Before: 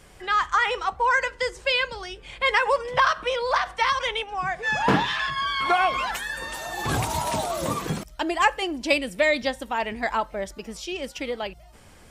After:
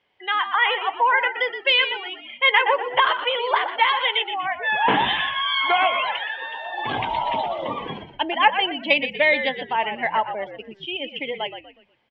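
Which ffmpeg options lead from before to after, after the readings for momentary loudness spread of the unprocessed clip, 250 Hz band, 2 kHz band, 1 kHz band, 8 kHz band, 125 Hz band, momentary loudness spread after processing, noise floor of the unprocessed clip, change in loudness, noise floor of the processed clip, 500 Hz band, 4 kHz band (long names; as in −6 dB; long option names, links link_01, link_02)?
10 LU, −3.0 dB, +3.5 dB, +3.0 dB, below −35 dB, −8.5 dB, 12 LU, −49 dBFS, +3.0 dB, −54 dBFS, +0.5 dB, +6.5 dB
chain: -filter_complex "[0:a]highpass=170,equalizer=frequency=170:width_type=q:width=4:gain=-10,equalizer=frequency=340:width_type=q:width=4:gain=-3,equalizer=frequency=890:width_type=q:width=4:gain=6,equalizer=frequency=1300:width_type=q:width=4:gain=-4,equalizer=frequency=2100:width_type=q:width=4:gain=6,equalizer=frequency=3100:width_type=q:width=4:gain=9,lowpass=frequency=3900:width=0.5412,lowpass=frequency=3900:width=1.3066,afftdn=noise_reduction=18:noise_floor=-32,asplit=5[link_01][link_02][link_03][link_04][link_05];[link_02]adelay=121,afreqshift=-65,volume=-9.5dB[link_06];[link_03]adelay=242,afreqshift=-130,volume=-18.9dB[link_07];[link_04]adelay=363,afreqshift=-195,volume=-28.2dB[link_08];[link_05]adelay=484,afreqshift=-260,volume=-37.6dB[link_09];[link_01][link_06][link_07][link_08][link_09]amix=inputs=5:normalize=0"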